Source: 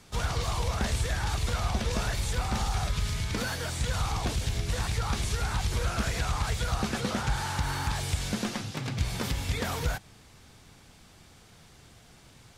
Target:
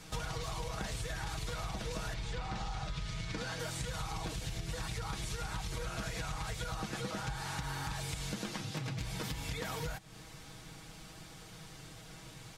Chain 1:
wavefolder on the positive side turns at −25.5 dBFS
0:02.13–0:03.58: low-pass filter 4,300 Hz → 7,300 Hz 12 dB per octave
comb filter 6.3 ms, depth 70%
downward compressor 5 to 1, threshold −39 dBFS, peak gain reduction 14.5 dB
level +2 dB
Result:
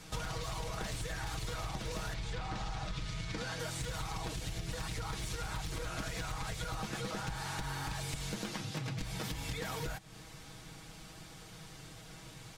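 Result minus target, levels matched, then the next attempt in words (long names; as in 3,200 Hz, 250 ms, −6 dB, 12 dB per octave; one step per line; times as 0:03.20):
wavefolder on the positive side: distortion +27 dB
wavefolder on the positive side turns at −18 dBFS
0:02.13–0:03.58: low-pass filter 4,300 Hz → 7,300 Hz 12 dB per octave
comb filter 6.3 ms, depth 70%
downward compressor 5 to 1, threshold −39 dBFS, peak gain reduction 15 dB
level +2 dB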